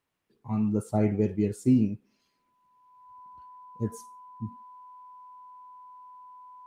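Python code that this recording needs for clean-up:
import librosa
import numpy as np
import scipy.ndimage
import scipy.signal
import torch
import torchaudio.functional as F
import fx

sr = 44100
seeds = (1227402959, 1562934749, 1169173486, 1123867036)

y = fx.notch(x, sr, hz=1000.0, q=30.0)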